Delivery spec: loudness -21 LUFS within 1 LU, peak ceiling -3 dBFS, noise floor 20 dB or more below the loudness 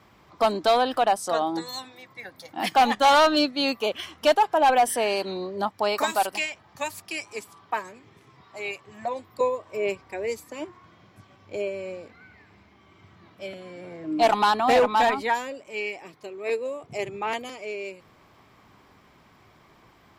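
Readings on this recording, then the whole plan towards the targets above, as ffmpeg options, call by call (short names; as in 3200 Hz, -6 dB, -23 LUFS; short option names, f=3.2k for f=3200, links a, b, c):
loudness -24.5 LUFS; peak -11.5 dBFS; loudness target -21.0 LUFS
-> -af "volume=3.5dB"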